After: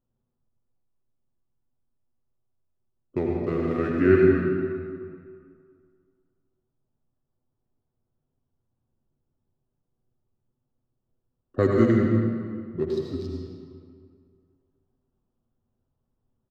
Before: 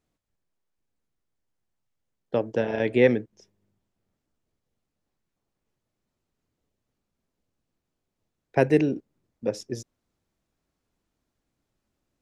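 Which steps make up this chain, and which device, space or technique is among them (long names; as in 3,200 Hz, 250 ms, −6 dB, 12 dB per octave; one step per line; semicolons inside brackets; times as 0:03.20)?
adaptive Wiener filter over 15 samples
low-shelf EQ 190 Hz +5 dB
comb filter 5.9 ms, depth 48%
slowed and reverbed (speed change −26%; convolution reverb RT60 2.2 s, pre-delay 73 ms, DRR −1.5 dB)
level −4 dB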